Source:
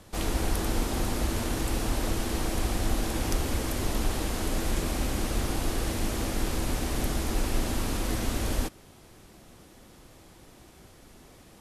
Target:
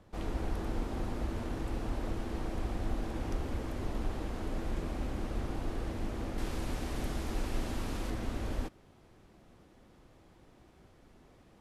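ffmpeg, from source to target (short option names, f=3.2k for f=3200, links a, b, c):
-af "asetnsamples=n=441:p=0,asendcmd='6.38 lowpass f 3900;8.1 lowpass f 2000',lowpass=f=1.4k:p=1,volume=-6.5dB"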